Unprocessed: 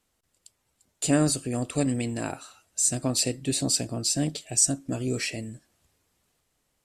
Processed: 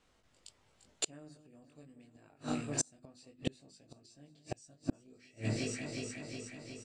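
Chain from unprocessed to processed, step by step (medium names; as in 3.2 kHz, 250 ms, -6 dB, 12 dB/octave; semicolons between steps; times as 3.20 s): distance through air 100 m; hum notches 50/100/150/200/250/300/350 Hz; doubling 20 ms -3 dB; echo whose repeats swap between lows and highs 182 ms, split 2.4 kHz, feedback 81%, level -13 dB; inverted gate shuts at -23 dBFS, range -36 dB; trim +4.5 dB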